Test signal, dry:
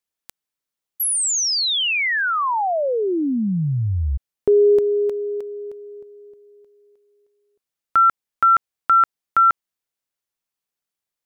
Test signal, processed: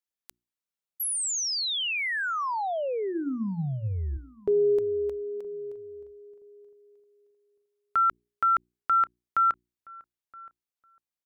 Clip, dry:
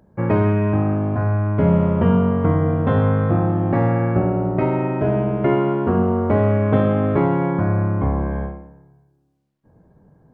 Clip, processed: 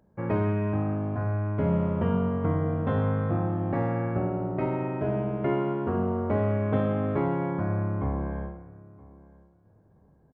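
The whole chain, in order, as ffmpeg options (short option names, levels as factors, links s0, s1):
-filter_complex "[0:a]bandreject=f=60:t=h:w=6,bandreject=f=120:t=h:w=6,bandreject=f=180:t=h:w=6,bandreject=f=240:t=h:w=6,bandreject=f=300:t=h:w=6,bandreject=f=360:t=h:w=6,asplit=2[s0][s1];[s1]adelay=971,lowpass=f=1700:p=1,volume=0.0794,asplit=2[s2][s3];[s3]adelay=971,lowpass=f=1700:p=1,volume=0.2[s4];[s2][s4]amix=inputs=2:normalize=0[s5];[s0][s5]amix=inputs=2:normalize=0,volume=0.376"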